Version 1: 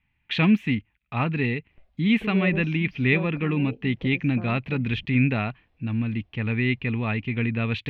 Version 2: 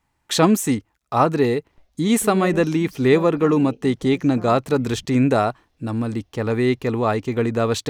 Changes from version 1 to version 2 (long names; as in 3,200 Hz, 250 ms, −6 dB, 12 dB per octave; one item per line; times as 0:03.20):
speech: add drawn EQ curve 210 Hz 0 dB, 340 Hz +11 dB, 550 Hz +14 dB, 940 Hz +10 dB, 1,300 Hz +9 dB, 2,500 Hz −13 dB, 5,000 Hz +7 dB, 8,900 Hz +11 dB, 14,000 Hz +4 dB
master: remove high-frequency loss of the air 330 metres